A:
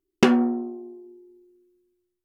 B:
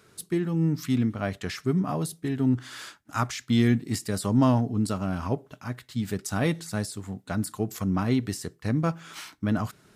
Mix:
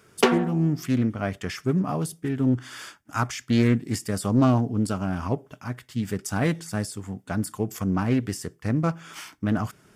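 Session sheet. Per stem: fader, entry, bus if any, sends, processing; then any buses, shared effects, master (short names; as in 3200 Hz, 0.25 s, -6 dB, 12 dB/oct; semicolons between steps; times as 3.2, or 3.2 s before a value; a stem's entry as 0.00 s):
+2.0 dB, 0.00 s, no send, steep high-pass 290 Hz; comb 4.4 ms, depth 97%; auto duck -12 dB, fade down 0.95 s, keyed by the second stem
+1.5 dB, 0.00 s, no send, notch 4000 Hz, Q 5.4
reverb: off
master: Doppler distortion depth 0.33 ms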